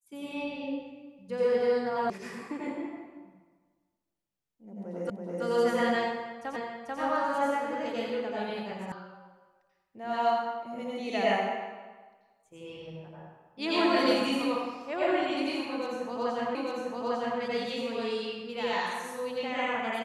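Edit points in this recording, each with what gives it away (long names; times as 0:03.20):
0:02.10: cut off before it has died away
0:05.10: the same again, the last 0.33 s
0:06.56: the same again, the last 0.44 s
0:08.92: cut off before it has died away
0:16.55: the same again, the last 0.85 s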